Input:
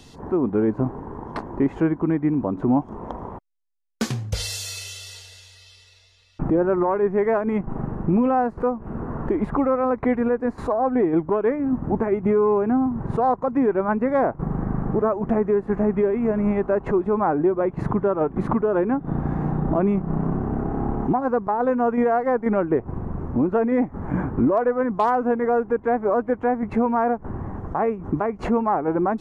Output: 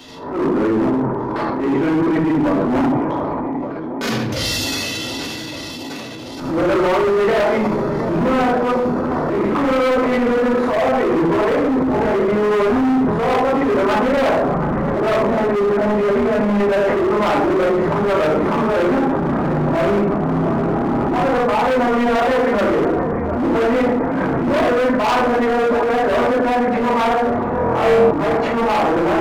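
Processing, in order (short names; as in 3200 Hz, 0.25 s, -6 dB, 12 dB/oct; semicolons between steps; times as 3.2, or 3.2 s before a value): HPF 470 Hz 6 dB/oct; bell 8400 Hz -11.5 dB 0.95 oct; on a send: swung echo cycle 1.179 s, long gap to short 1.5:1, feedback 57%, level -15.5 dB; on the sum: shoebox room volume 160 m³, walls mixed, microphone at 2.7 m; in parallel at 0 dB: compressor 6:1, threshold -33 dBFS, peak gain reduction 23.5 dB; on the sum: overloaded stage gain 15 dB; transient shaper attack -10 dB, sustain +7 dB; 27.5–28.11 flutter echo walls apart 4.1 m, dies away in 0.56 s; gain +1.5 dB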